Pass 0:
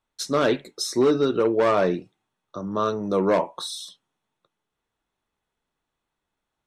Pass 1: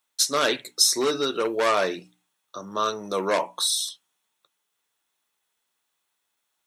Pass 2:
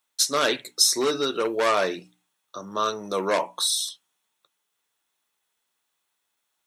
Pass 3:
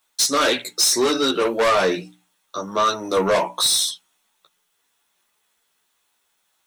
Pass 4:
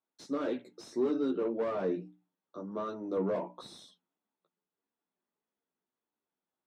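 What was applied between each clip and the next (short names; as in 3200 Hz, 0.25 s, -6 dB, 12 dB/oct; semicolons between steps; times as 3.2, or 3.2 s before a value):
tilt +4 dB/oct; notches 60/120/180/240/300 Hz
nothing audible
in parallel at +2 dB: limiter -14 dBFS, peak gain reduction 8.5 dB; on the sum: chorus voices 6, 0.4 Hz, delay 14 ms, depth 3.6 ms; soft clip -16.5 dBFS, distortion -13 dB; gain +4.5 dB
band-pass 250 Hz, Q 1.2; gain -6.5 dB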